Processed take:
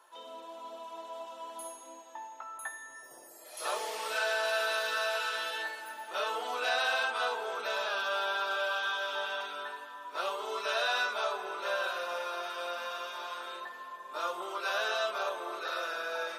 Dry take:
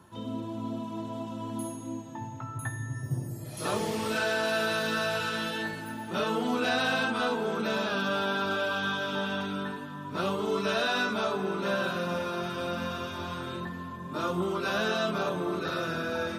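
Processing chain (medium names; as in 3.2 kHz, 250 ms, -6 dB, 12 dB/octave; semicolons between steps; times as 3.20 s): high-pass 540 Hz 24 dB/octave; trim -1.5 dB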